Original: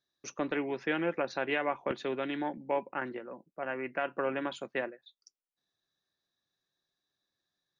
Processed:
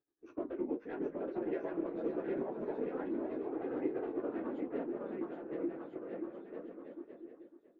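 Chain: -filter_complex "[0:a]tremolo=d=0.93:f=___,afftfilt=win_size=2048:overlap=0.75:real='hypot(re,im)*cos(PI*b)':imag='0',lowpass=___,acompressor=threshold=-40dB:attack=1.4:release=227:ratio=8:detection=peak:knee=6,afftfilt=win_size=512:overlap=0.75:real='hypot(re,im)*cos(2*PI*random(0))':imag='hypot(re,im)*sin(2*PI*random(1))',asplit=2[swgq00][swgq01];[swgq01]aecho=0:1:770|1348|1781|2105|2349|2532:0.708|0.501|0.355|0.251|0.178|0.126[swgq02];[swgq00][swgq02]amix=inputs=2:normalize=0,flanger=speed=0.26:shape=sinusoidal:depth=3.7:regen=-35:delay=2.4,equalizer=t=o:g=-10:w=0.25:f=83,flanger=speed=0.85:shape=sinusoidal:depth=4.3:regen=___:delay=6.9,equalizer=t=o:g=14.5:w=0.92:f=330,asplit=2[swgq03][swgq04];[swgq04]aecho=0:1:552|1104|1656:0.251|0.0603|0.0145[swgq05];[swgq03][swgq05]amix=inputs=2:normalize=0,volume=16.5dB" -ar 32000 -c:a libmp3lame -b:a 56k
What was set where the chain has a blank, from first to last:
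9.6, 1200, -64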